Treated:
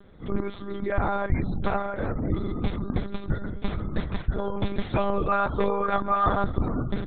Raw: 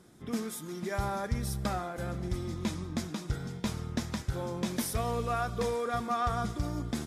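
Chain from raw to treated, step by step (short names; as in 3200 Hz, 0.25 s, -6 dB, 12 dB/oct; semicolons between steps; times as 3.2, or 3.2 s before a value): spectral gate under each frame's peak -30 dB strong; monotone LPC vocoder at 8 kHz 200 Hz; gain +7.5 dB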